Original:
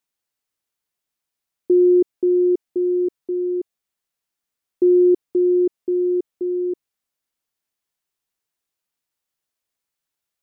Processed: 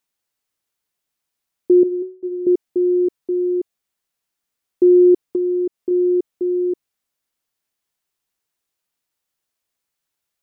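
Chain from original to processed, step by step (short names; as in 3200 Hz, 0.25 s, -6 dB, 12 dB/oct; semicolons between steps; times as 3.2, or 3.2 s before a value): 1.83–2.47 resonator 370 Hz, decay 0.4 s, harmonics all, mix 90%; 5.23–5.91 compressor, threshold -21 dBFS, peak gain reduction 6 dB; gain +3 dB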